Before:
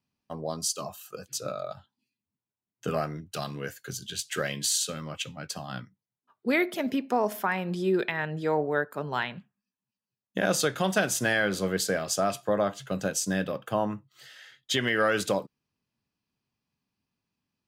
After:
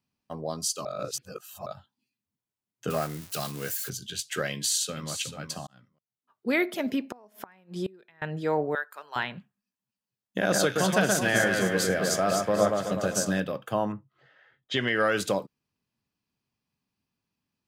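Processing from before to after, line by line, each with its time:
0:00.85–0:01.66: reverse
0:02.90–0:03.90: spike at every zero crossing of −28 dBFS
0:04.52–0:05.10: delay throw 440 ms, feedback 15%, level −9.5 dB
0:05.67–0:06.59: fade in
0:07.09–0:08.22: gate with flip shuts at −21 dBFS, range −28 dB
0:08.75–0:09.16: high-pass filter 1,200 Hz
0:10.39–0:13.40: delay that swaps between a low-pass and a high-pass 125 ms, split 1,900 Hz, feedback 70%, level −2 dB
0:13.92–0:15.16: low-pass that shuts in the quiet parts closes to 1,000 Hz, open at −20 dBFS

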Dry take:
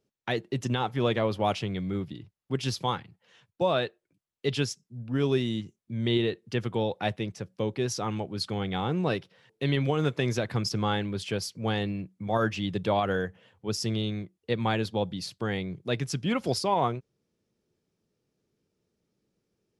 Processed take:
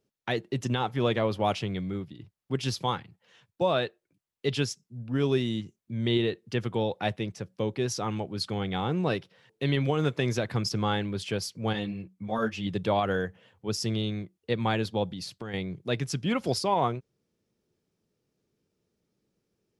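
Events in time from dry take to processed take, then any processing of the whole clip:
0:01.77–0:02.19: fade out, to −7 dB
0:11.73–0:12.67: string-ensemble chorus
0:15.11–0:15.54: downward compressor, threshold −33 dBFS

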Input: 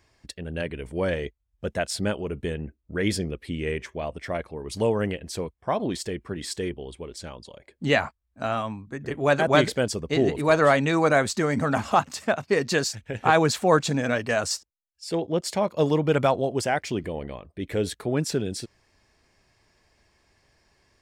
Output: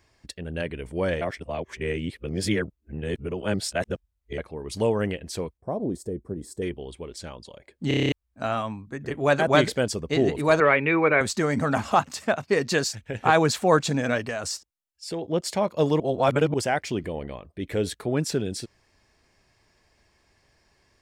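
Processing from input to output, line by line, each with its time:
0:01.21–0:04.38: reverse
0:05.57–0:06.62: drawn EQ curve 490 Hz 0 dB, 2,800 Hz −28 dB, 8,700 Hz −6 dB
0:07.88: stutter in place 0.03 s, 8 plays
0:10.60–0:11.21: loudspeaker in its box 160–2,700 Hz, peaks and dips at 250 Hz −8 dB, 390 Hz +7 dB, 700 Hz −8 dB, 2,300 Hz +10 dB
0:14.22–0:15.25: downward compressor, threshold −26 dBFS
0:16.00–0:16.54: reverse

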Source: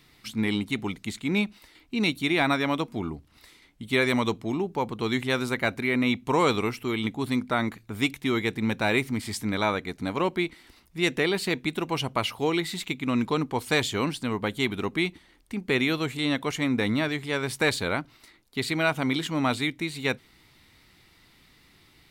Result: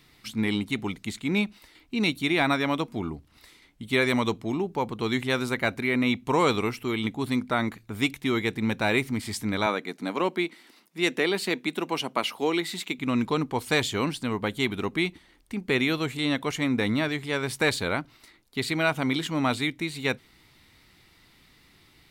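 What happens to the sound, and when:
0:09.66–0:12.99: high-pass filter 190 Hz 24 dB per octave

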